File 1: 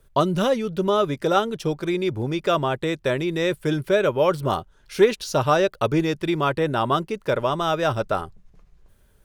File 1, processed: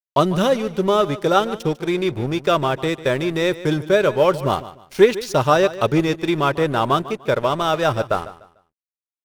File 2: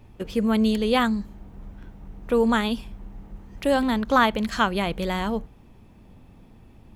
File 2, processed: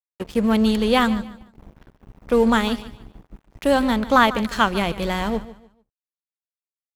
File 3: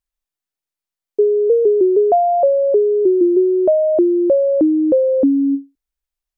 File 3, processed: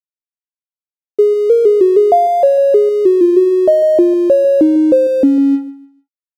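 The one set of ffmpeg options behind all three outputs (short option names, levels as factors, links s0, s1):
-af "aeval=exprs='sgn(val(0))*max(abs(val(0))-0.0119,0)':c=same,aecho=1:1:148|296|444:0.158|0.0444|0.0124,volume=1.58"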